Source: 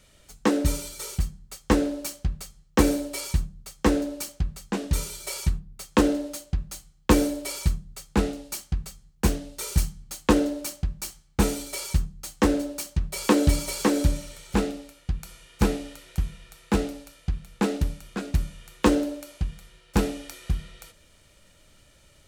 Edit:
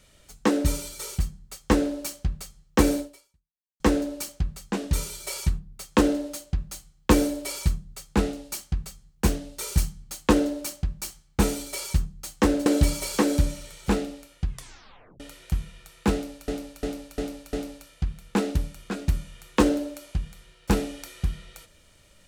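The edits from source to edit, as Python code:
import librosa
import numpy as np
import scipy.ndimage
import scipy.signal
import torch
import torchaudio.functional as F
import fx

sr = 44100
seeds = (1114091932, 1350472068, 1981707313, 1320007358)

y = fx.edit(x, sr, fx.fade_out_span(start_s=3.0, length_s=0.8, curve='exp'),
    fx.cut(start_s=12.66, length_s=0.66),
    fx.tape_stop(start_s=15.11, length_s=0.75),
    fx.repeat(start_s=16.79, length_s=0.35, count=5), tone=tone)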